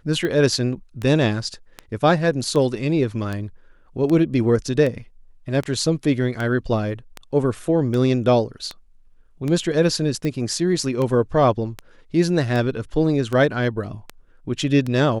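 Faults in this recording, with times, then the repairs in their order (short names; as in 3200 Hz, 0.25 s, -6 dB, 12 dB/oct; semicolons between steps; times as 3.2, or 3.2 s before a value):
tick 78 rpm -14 dBFS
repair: de-click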